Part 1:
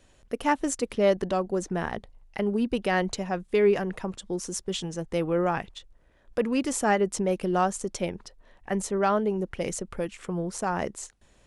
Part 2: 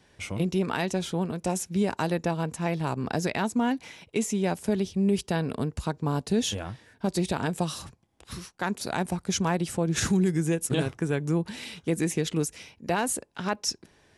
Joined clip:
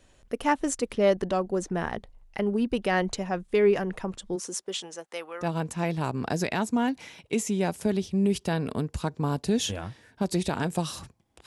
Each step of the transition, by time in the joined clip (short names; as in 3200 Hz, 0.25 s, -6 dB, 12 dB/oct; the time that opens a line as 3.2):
part 1
4.35–5.47 HPF 220 Hz -> 1300 Hz
5.43 switch to part 2 from 2.26 s, crossfade 0.08 s